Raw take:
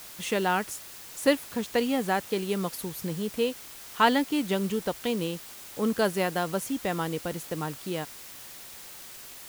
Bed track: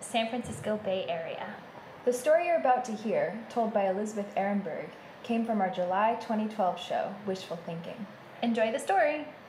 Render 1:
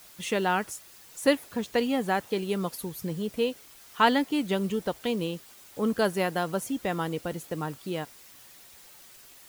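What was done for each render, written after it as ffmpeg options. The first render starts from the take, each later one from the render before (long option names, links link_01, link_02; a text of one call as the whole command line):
ffmpeg -i in.wav -af "afftdn=noise_reduction=8:noise_floor=-45" out.wav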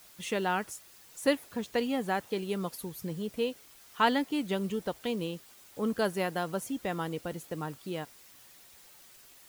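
ffmpeg -i in.wav -af "volume=-4dB" out.wav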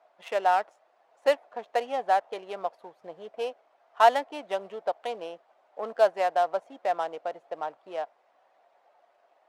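ffmpeg -i in.wav -af "adynamicsmooth=sensitivity=6.5:basefreq=1100,highpass=frequency=670:width_type=q:width=4.9" out.wav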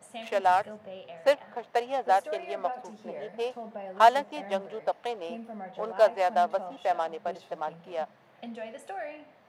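ffmpeg -i in.wav -i bed.wav -filter_complex "[1:a]volume=-12dB[link_01];[0:a][link_01]amix=inputs=2:normalize=0" out.wav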